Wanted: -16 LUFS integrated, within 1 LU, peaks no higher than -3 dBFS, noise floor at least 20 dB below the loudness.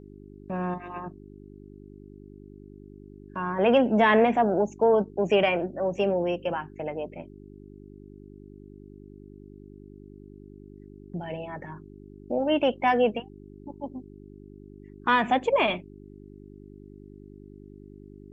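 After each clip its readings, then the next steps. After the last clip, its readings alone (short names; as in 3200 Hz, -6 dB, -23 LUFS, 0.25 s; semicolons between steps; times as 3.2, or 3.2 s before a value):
hum 50 Hz; harmonics up to 400 Hz; hum level -45 dBFS; loudness -25.5 LUFS; peak -8.5 dBFS; loudness target -16.0 LUFS
-> de-hum 50 Hz, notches 8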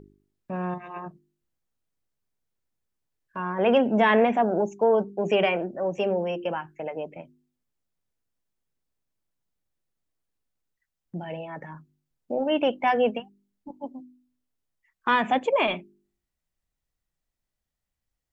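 hum none; loudness -25.0 LUFS; peak -8.0 dBFS; loudness target -16.0 LUFS
-> gain +9 dB; limiter -3 dBFS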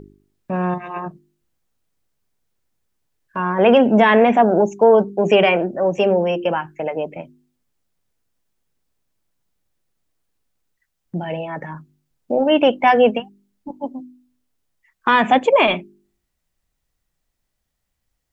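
loudness -16.5 LUFS; peak -3.0 dBFS; noise floor -76 dBFS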